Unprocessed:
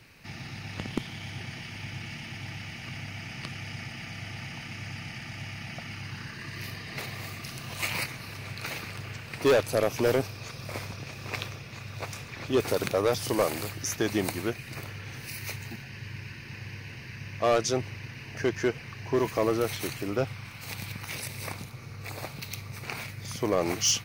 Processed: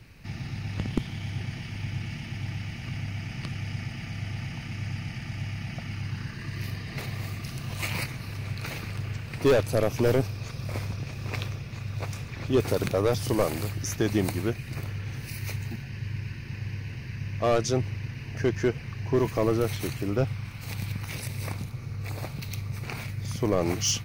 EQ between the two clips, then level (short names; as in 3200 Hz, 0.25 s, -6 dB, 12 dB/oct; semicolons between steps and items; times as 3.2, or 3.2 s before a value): low shelf 79 Hz +8 dB; low shelf 300 Hz +8 dB; -2.0 dB